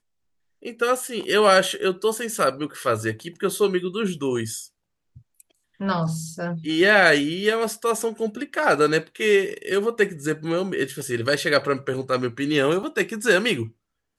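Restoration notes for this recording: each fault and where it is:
12.83 s: dropout 3.2 ms

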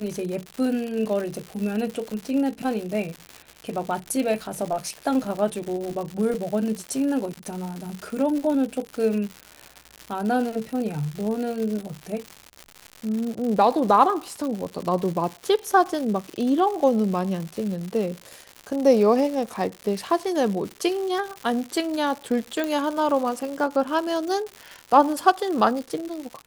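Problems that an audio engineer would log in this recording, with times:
crackle 200 per s -29 dBFS
22.64 s: pop -13 dBFS

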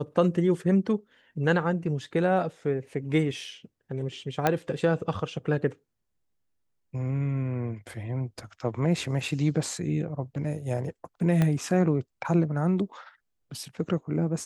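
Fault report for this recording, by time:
4.47 s: pop -9 dBFS
11.42 s: pop -13 dBFS

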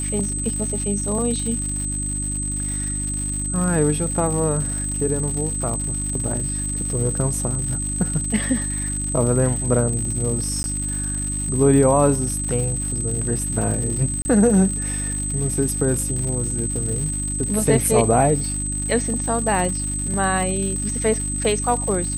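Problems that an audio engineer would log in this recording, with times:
crackle 180 per s -27 dBFS
hum 50 Hz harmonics 6 -28 dBFS
whine 8.2 kHz -25 dBFS
10.63–10.64 s: dropout 11 ms
14.22–14.25 s: dropout 30 ms

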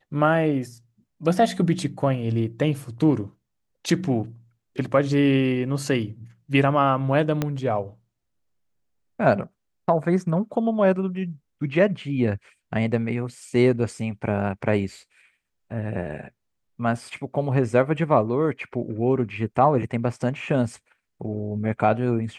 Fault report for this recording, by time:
7.42 s: pop -10 dBFS

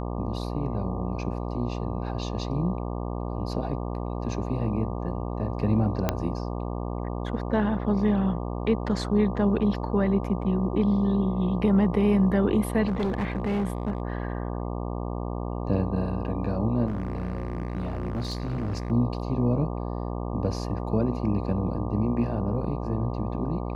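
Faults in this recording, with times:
buzz 60 Hz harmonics 20 -31 dBFS
6.09 s: pop -9 dBFS
12.87–14.02 s: clipped -22.5 dBFS
16.87–18.92 s: clipped -25.5 dBFS

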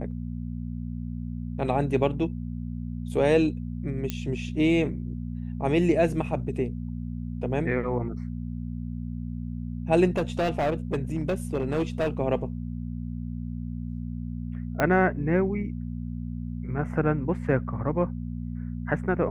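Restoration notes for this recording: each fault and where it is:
hum 60 Hz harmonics 4 -33 dBFS
4.10 s: pop -14 dBFS
10.17–12.09 s: clipped -21 dBFS
14.80 s: pop -11 dBFS

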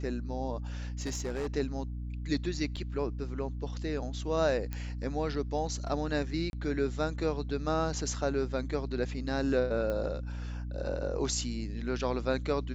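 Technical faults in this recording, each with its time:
hum 60 Hz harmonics 5 -37 dBFS
1.00–1.47 s: clipped -29.5 dBFS
2.76–2.77 s: dropout 5.8 ms
4.73 s: pop -22 dBFS
6.50–6.53 s: dropout 31 ms
9.90 s: pop -22 dBFS

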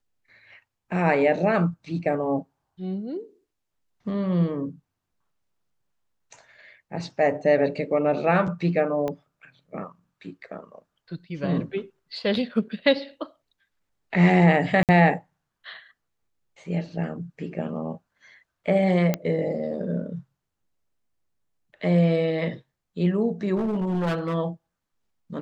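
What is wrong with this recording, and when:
9.08 s: pop -17 dBFS
14.83–14.89 s: dropout 58 ms
19.14 s: pop -10 dBFS
23.56–24.35 s: clipped -21.5 dBFS

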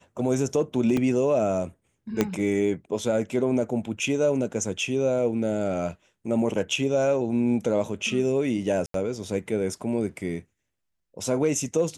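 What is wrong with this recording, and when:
0.97 s: dropout 2.5 ms
2.21 s: pop -8 dBFS
8.86–8.94 s: dropout 83 ms

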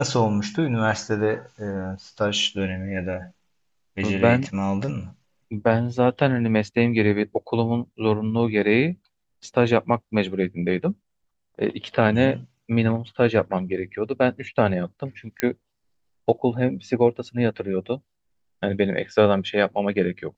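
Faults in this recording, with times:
15.40 s: pop -7 dBFS

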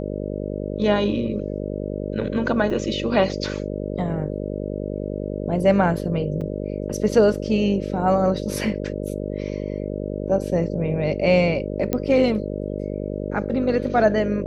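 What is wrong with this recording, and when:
buzz 50 Hz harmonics 12 -28 dBFS
2.70 s: dropout 3.5 ms
6.41–6.42 s: dropout 5.2 ms
11.93 s: pop -9 dBFS

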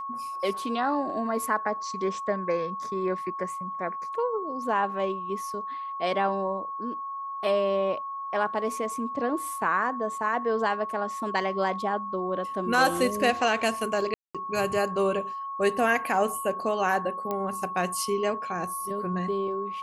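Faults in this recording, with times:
whine 1.1 kHz -32 dBFS
14.14–14.35 s: dropout 206 ms
17.31 s: pop -17 dBFS

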